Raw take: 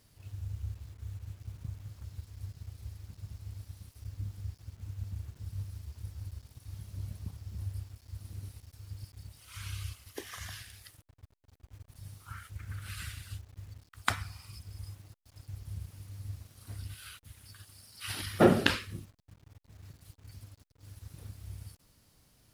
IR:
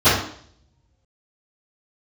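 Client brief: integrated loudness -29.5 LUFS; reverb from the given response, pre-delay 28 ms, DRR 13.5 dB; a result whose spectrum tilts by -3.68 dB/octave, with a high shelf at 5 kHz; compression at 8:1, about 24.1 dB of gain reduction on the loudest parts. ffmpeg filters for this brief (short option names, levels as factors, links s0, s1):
-filter_complex "[0:a]highshelf=f=5000:g=6.5,acompressor=threshold=0.00708:ratio=8,asplit=2[s0][s1];[1:a]atrim=start_sample=2205,adelay=28[s2];[s1][s2]afir=irnorm=-1:irlink=0,volume=0.0126[s3];[s0][s3]amix=inputs=2:normalize=0,volume=8.91"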